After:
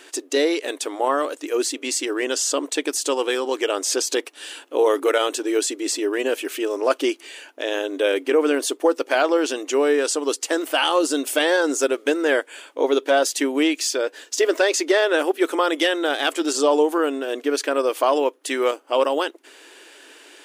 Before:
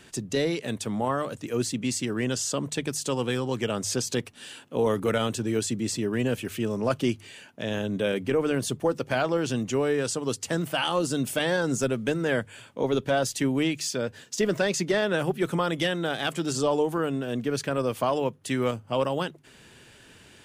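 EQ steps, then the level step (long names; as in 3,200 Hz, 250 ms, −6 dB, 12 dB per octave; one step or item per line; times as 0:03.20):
linear-phase brick-wall high-pass 270 Hz
+7.0 dB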